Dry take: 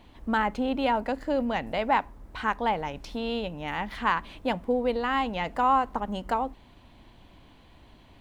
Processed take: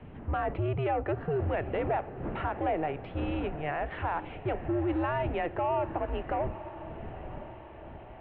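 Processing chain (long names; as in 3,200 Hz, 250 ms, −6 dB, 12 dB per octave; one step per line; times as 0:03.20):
wind on the microphone 340 Hz −37 dBFS, from 0:03.23 170 Hz
dynamic equaliser 740 Hz, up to +5 dB, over −37 dBFS, Q 0.83
brickwall limiter −20 dBFS, peak gain reduction 11.5 dB
soft clipping −21 dBFS, distortion −21 dB
feedback delay with all-pass diffusion 945 ms, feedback 56%, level −13.5 dB
single-sideband voice off tune −150 Hz 170–2,900 Hz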